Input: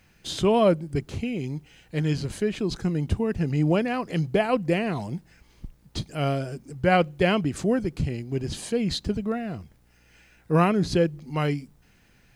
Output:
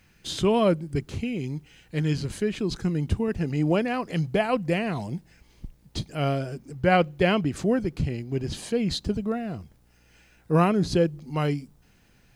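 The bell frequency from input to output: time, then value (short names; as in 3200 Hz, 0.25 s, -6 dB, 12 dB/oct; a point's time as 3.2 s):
bell -3.5 dB 0.88 oct
670 Hz
from 3.28 s 130 Hz
from 4.11 s 360 Hz
from 4.97 s 1300 Hz
from 6.06 s 8700 Hz
from 8.9 s 2000 Hz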